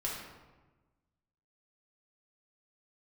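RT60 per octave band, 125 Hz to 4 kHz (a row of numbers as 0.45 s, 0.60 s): 1.6 s, 1.5 s, 1.3 s, 1.2 s, 1.0 s, 0.75 s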